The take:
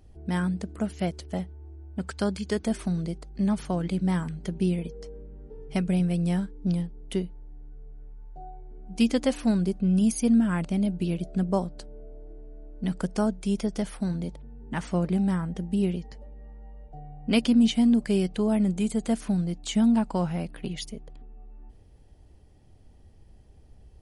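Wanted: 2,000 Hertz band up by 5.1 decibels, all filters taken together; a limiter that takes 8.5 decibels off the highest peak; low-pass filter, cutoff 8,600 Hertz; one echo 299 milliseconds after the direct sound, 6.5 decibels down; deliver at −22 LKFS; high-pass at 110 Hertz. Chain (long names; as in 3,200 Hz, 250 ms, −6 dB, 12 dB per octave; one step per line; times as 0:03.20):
high-pass filter 110 Hz
low-pass filter 8,600 Hz
parametric band 2,000 Hz +6.5 dB
brickwall limiter −16.5 dBFS
single-tap delay 299 ms −6.5 dB
level +5.5 dB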